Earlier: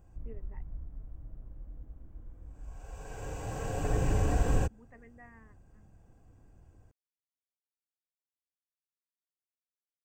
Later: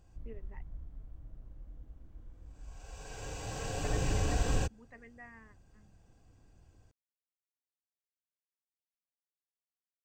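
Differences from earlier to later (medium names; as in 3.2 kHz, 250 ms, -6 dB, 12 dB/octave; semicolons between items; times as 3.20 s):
background -3.5 dB; master: add peaking EQ 4.3 kHz +13 dB 1.6 oct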